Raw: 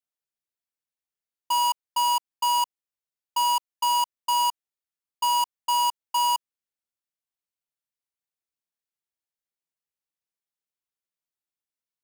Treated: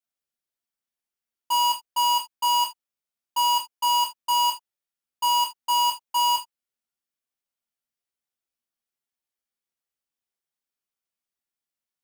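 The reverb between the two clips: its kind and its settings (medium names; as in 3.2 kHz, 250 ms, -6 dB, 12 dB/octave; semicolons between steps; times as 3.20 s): gated-style reverb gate 100 ms falling, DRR -2 dB; trim -2.5 dB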